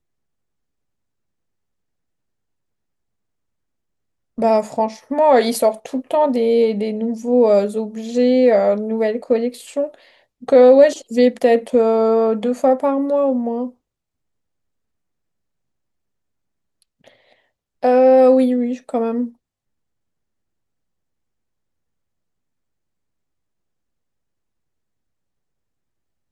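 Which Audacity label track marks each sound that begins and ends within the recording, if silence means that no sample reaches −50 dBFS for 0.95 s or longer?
4.380000	13.740000	sound
16.820000	19.350000	sound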